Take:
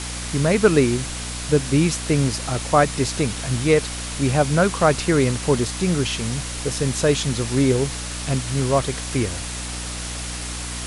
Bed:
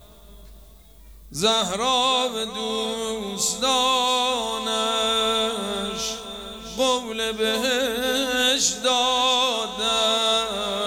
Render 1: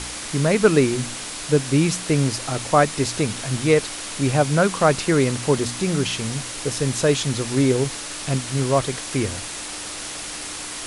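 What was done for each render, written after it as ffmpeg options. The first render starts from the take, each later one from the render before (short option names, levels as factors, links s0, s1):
-af "bandreject=f=60:t=h:w=4,bandreject=f=120:t=h:w=4,bandreject=f=180:t=h:w=4,bandreject=f=240:t=h:w=4"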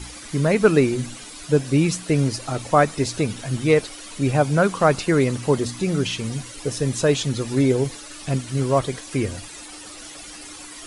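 -af "afftdn=nr=12:nf=-32"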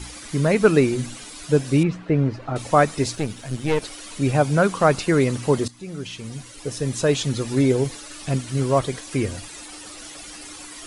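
-filter_complex "[0:a]asettb=1/sr,asplit=3[s0][s1][s2];[s0]atrim=end=1.834[s3];[s1]atrim=start=1.83:end=2.56,asetpts=PTS-STARTPTS,afade=t=in:d=0.004:c=qsin,afade=t=out:st=0.726:d=0.004:c=qsin,lowpass=1800[s4];[s2]atrim=start=2.556[s5];[s3][s4]acrossfade=d=0.004:c1=hsin:c2=qsin[s6];[s6][s5]acrossfade=d=0.004:c1=qsin:c2=hsin,asettb=1/sr,asplit=3[s7][s8][s9];[s7]atrim=end=3.154[s10];[s8]atrim=start=3.15:end=3.82,asetpts=PTS-STARTPTS,afade=t=in:d=0.004:c=qsin,afade=t=out:st=0.666:d=0.004:c=qsin,aeval=exprs='(tanh(5.62*val(0)+0.75)-tanh(0.75))/5.62':c=same[s11];[s9]atrim=start=3.816[s12];[s10][s11]acrossfade=d=0.004:c1=hsin:c2=qsin[s13];[s13][s12]acrossfade=d=0.004:c1=qsin:c2=hsin,asplit=2[s14][s15];[s14]atrim=end=5.68,asetpts=PTS-STARTPTS,afade=t=out:st=5.676:d=0.004:c=hsin:silence=0.149624[s16];[s15]atrim=start=5.68,asetpts=PTS-STARTPTS,afade=t=in:d=1.6:silence=0.149624[s17];[s16][s17]concat=n=2:v=0:a=1"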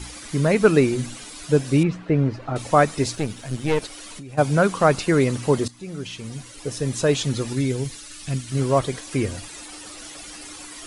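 -filter_complex "[0:a]asplit=3[s0][s1][s2];[s0]afade=t=out:st=3.86:d=0.02[s3];[s1]acompressor=threshold=0.02:ratio=20:attack=3.2:release=140:knee=1:detection=peak,afade=t=in:st=3.86:d=0.02,afade=t=out:st=4.37:d=0.02[s4];[s2]afade=t=in:st=4.37:d=0.02[s5];[s3][s4][s5]amix=inputs=3:normalize=0,asettb=1/sr,asplit=3[s6][s7][s8];[s6]atrim=end=7.534[s9];[s7]atrim=start=7.53:end=8.52,asetpts=PTS-STARTPTS,afade=t=in:d=0.004:c=qsin,afade=t=out:st=0.986:d=0.004:c=qsin,equalizer=f=610:w=0.51:g=-10[s10];[s8]atrim=start=8.516[s11];[s9][s10]acrossfade=d=0.004:c1=hsin:c2=qsin[s12];[s12][s11]acrossfade=d=0.004:c1=qsin:c2=hsin"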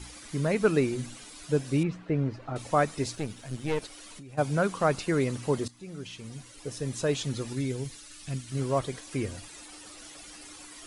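-af "volume=0.398"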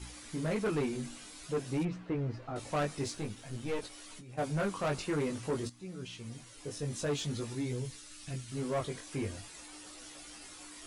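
-af "flanger=delay=16:depth=4.8:speed=0.5,asoftclip=type=tanh:threshold=0.0447"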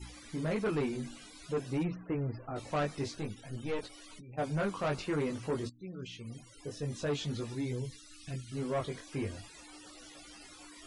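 -filter_complex "[0:a]afftfilt=real='re*gte(hypot(re,im),0.00251)':imag='im*gte(hypot(re,im),0.00251)':win_size=1024:overlap=0.75,acrossover=split=5900[s0][s1];[s1]acompressor=threshold=0.00126:ratio=4:attack=1:release=60[s2];[s0][s2]amix=inputs=2:normalize=0"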